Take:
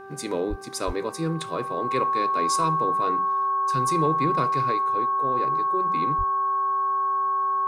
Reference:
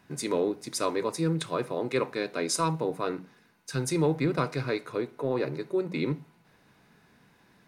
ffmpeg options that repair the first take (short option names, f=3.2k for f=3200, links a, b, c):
-filter_complex "[0:a]bandreject=f=390.5:t=h:w=4,bandreject=f=781:t=h:w=4,bandreject=f=1.1715k:t=h:w=4,bandreject=f=1.562k:t=h:w=4,bandreject=f=1.1k:w=30,asplit=3[a][b][c];[a]afade=t=out:st=0.49:d=0.02[d];[b]highpass=f=140:w=0.5412,highpass=f=140:w=1.3066,afade=t=in:st=0.49:d=0.02,afade=t=out:st=0.61:d=0.02[e];[c]afade=t=in:st=0.61:d=0.02[f];[d][e][f]amix=inputs=3:normalize=0,asplit=3[g][h][i];[g]afade=t=out:st=0.86:d=0.02[j];[h]highpass=f=140:w=0.5412,highpass=f=140:w=1.3066,afade=t=in:st=0.86:d=0.02,afade=t=out:st=0.98:d=0.02[k];[i]afade=t=in:st=0.98:d=0.02[l];[j][k][l]amix=inputs=3:normalize=0,asplit=3[m][n][o];[m]afade=t=out:st=6.17:d=0.02[p];[n]highpass=f=140:w=0.5412,highpass=f=140:w=1.3066,afade=t=in:st=6.17:d=0.02,afade=t=out:st=6.29:d=0.02[q];[o]afade=t=in:st=6.29:d=0.02[r];[p][q][r]amix=inputs=3:normalize=0,asetnsamples=n=441:p=0,asendcmd='4.72 volume volume 3.5dB',volume=0dB"